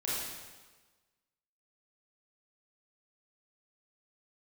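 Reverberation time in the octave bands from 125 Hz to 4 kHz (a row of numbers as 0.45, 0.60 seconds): 1.3, 1.3, 1.3, 1.3, 1.2, 1.2 seconds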